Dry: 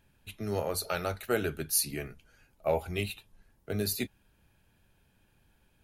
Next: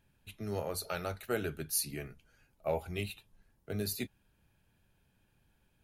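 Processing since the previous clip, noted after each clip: peaking EQ 140 Hz +2.5 dB 1.1 oct; trim -5 dB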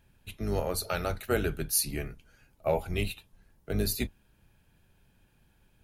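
octave divider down 2 oct, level -1 dB; trim +5.5 dB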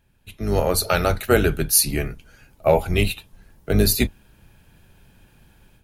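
level rider gain up to 12 dB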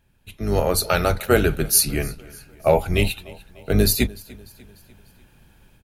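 feedback delay 297 ms, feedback 51%, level -22 dB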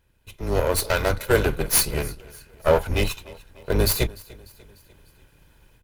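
comb filter that takes the minimum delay 2 ms; trim -1 dB

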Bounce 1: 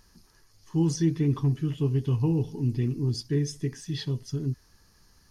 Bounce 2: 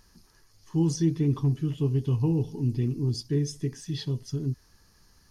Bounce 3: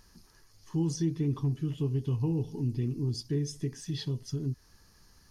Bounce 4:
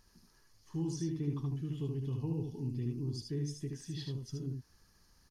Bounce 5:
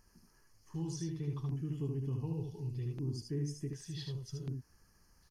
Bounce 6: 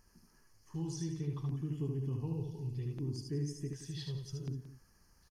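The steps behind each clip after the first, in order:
dynamic bell 1.8 kHz, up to -5 dB, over -51 dBFS, Q 1.2
compression 1.5:1, threshold -34 dBFS, peak gain reduction 6 dB
delay 75 ms -4 dB; trim -7.5 dB
LFO notch square 0.67 Hz 260–3700 Hz
delay 175 ms -13.5 dB

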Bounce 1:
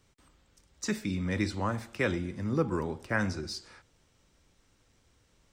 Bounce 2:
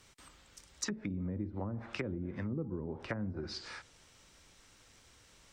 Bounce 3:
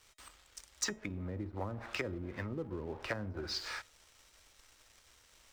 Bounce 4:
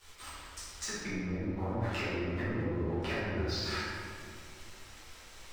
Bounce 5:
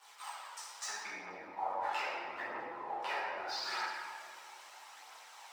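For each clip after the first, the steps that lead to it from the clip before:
low-pass that closes with the level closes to 320 Hz, closed at -27 dBFS; tilt shelf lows -4.5 dB, about 700 Hz; compression 2.5:1, threshold -42 dBFS, peak gain reduction 9.5 dB; trim +5 dB
peaking EQ 180 Hz -12 dB 1.9 oct; waveshaping leveller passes 2; feedback comb 630 Hz, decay 0.29 s, mix 50%; trim +3.5 dB
compression, threshold -44 dBFS, peak gain reduction 13 dB; reverberation RT60 2.2 s, pre-delay 5 ms, DRR -12.5 dB
resonant high-pass 830 Hz, resonance Q 3.9; phaser 0.78 Hz, delay 2.4 ms, feedback 29%; trim -3.5 dB

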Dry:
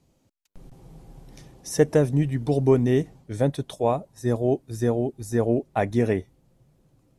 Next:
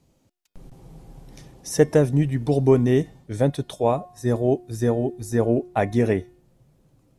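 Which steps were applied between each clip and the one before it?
de-hum 359.3 Hz, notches 15; trim +2 dB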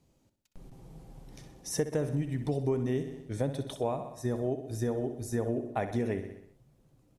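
feedback delay 63 ms, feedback 54%, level -11.5 dB; compression 3:1, threshold -23 dBFS, peak gain reduction 10 dB; trim -5.5 dB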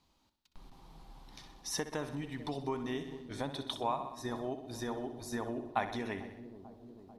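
ten-band graphic EQ 125 Hz -11 dB, 500 Hz -9 dB, 1 kHz +11 dB, 4 kHz +11 dB, 8 kHz -5 dB; feedback echo behind a low-pass 443 ms, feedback 67%, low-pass 460 Hz, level -11 dB; trim -2.5 dB

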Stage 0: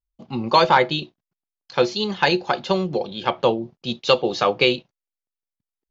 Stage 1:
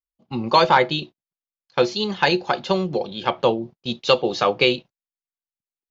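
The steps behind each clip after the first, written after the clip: gate -37 dBFS, range -17 dB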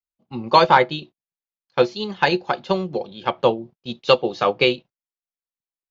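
treble shelf 4.6 kHz -6 dB; upward expansion 1.5:1, over -29 dBFS; trim +3 dB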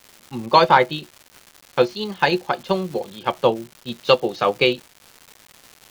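crackle 380 per s -32 dBFS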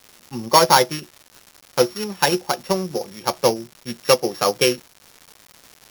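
sorted samples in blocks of 8 samples

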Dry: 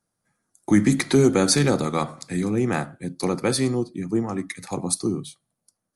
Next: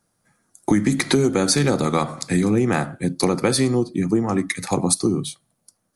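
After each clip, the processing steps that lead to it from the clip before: compression 6:1, threshold -24 dBFS, peak gain reduction 11.5 dB; trim +9 dB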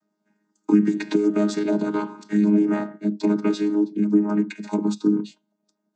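vocoder on a held chord bare fifth, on G#3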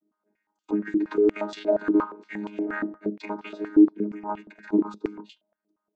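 step-sequenced band-pass 8.5 Hz 330–3100 Hz; trim +7.5 dB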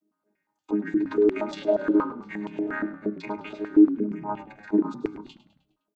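frequency-shifting echo 103 ms, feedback 49%, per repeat -35 Hz, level -14.5 dB

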